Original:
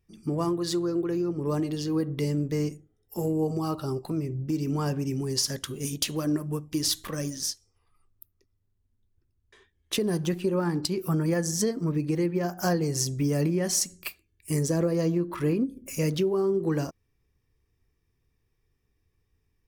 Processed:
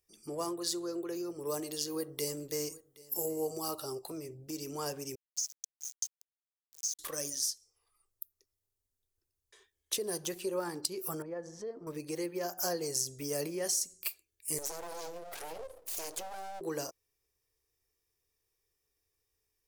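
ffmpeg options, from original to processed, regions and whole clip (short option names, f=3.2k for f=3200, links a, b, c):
-filter_complex "[0:a]asettb=1/sr,asplit=3[a][b][c];[a]atrim=end=1.164[d];[b]atrim=start=1.16:end=3.82,asetpts=PTS-STARTPTS,afade=t=in:d=0.004:c=qsin,afade=t=out:st=2.656:d=0.004:c=qsin,highshelf=f=8.5k:g=8,aecho=1:1:772:0.0841,atrim=end_sample=117306[e];[c]atrim=start=3.816[f];[d][e]acrossfade=d=0.004:c1=hsin:c2=qsin[g];[g][f]acrossfade=d=0.004:c1=qsin:c2=hsin,asettb=1/sr,asplit=3[h][i][j];[h]atrim=end=5.154[k];[i]atrim=start=5.15:end=6.99,asetpts=PTS-STARTPTS,afade=t=in:d=0.004:c=qsin,afade=t=out:st=1.836:d=0.004:c=qsin,bandpass=f=6.4k:t=q:w=11,aeval=exprs='val(0)*gte(abs(val(0)),0.0075)':c=same[l];[j]atrim=start=6.986[m];[k][l]acrossfade=d=0.004:c1=hsin:c2=qsin[n];[n][m]acrossfade=d=0.004:c1=qsin:c2=hsin,asettb=1/sr,asplit=3[o][p][q];[o]atrim=end=11.224[r];[p]atrim=start=11.22:end=11.87,asetpts=PTS-STARTPTS,afade=t=in:d=0.004:c=qsin,afade=t=out:st=0.646:d=0.004:c=qsin,lowpass=1.4k,acompressor=threshold=-30dB:ratio=2.5:attack=3.2:release=140:knee=1:detection=peak[s];[q]atrim=start=11.866[t];[r][s]acrossfade=d=0.004:c1=hsin:c2=qsin[u];[u][t]acrossfade=d=0.004:c1=qsin:c2=hsin,asettb=1/sr,asplit=3[v][w][x];[v]atrim=end=14.584[y];[w]atrim=start=14.58:end=16.61,asetpts=PTS-STARTPTS,afade=t=in:d=0.004:c=qsin,afade=t=out:st=2.026:d=0.004:c=qsin,bandreject=f=50:t=h:w=6,bandreject=f=100:t=h:w=6,bandreject=f=150:t=h:w=6,bandreject=f=200:t=h:w=6,bandreject=f=250:t=h:w=6,bandreject=f=300:t=h:w=6,bandreject=f=350:t=h:w=6,acompressor=threshold=-30dB:ratio=3:attack=3.2:release=140:knee=1:detection=peak,aeval=exprs='abs(val(0))':c=same[z];[x]atrim=start=16.606[aa];[y][z]acrossfade=d=0.004:c1=hsin:c2=qsin[ab];[ab][aa]acrossfade=d=0.004:c1=qsin:c2=hsin,bass=f=250:g=4,treble=f=4k:g=14,acrossover=split=440[ac][ad];[ad]acompressor=threshold=-23dB:ratio=5[ae];[ac][ae]amix=inputs=2:normalize=0,lowshelf=f=310:t=q:w=1.5:g=-13.5,volume=-7.5dB"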